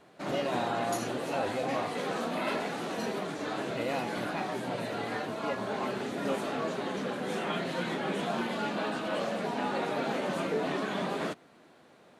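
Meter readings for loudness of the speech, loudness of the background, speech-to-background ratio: -38.5 LUFS, -33.5 LUFS, -5.0 dB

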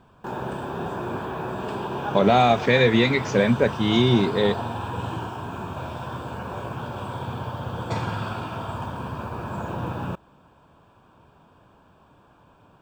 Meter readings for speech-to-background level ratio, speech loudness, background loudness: 11.0 dB, -20.0 LUFS, -31.0 LUFS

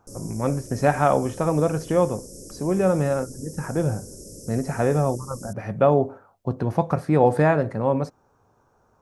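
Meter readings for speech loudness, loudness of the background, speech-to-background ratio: -23.5 LUFS, -40.5 LUFS, 17.0 dB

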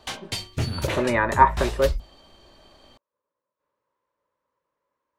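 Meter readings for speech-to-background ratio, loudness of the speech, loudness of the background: 8.0 dB, -22.0 LUFS, -30.0 LUFS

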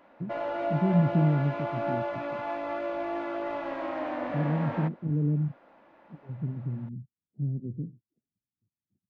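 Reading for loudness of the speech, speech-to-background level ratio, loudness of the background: -30.0 LUFS, 3.0 dB, -33.0 LUFS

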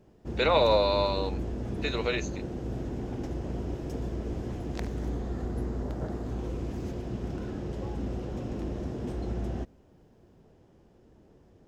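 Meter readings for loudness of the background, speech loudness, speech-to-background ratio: -35.5 LUFS, -27.0 LUFS, 8.5 dB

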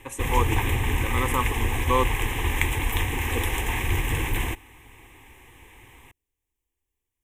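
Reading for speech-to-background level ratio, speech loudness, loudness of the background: -3.0 dB, -29.5 LUFS, -26.5 LUFS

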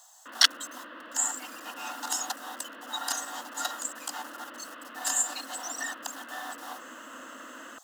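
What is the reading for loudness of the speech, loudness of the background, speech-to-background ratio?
-30.5 LUFS, -44.5 LUFS, 14.0 dB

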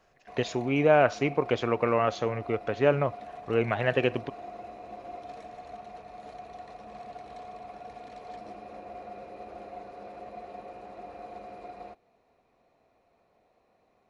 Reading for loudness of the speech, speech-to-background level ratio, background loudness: -27.0 LUFS, 17.0 dB, -44.0 LUFS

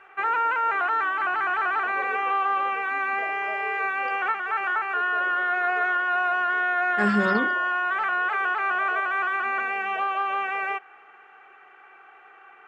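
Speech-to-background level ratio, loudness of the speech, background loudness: -1.5 dB, -26.0 LUFS, -24.5 LUFS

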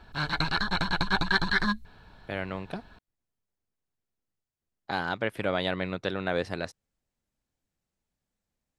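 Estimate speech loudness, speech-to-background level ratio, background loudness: -32.0 LUFS, -4.5 dB, -27.5 LUFS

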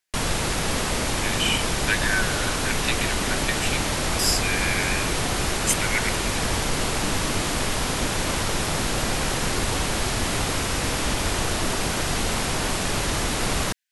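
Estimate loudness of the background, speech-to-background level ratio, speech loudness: -24.5 LUFS, -2.5 dB, -27.0 LUFS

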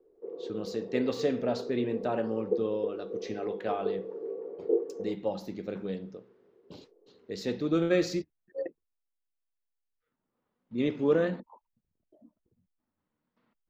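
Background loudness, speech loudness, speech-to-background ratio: -36.5 LUFS, -32.5 LUFS, 4.0 dB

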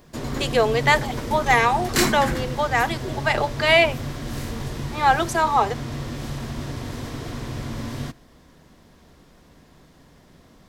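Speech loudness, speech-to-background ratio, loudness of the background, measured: -21.0 LUFS, 8.5 dB, -29.5 LUFS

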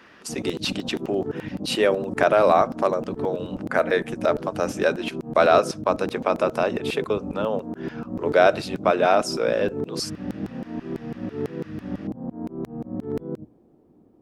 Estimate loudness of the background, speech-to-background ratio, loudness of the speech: -32.5 LUFS, 9.0 dB, -23.5 LUFS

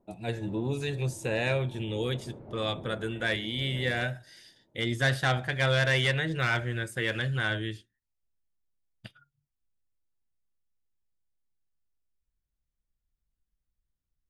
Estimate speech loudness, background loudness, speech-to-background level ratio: -29.5 LUFS, -47.0 LUFS, 17.5 dB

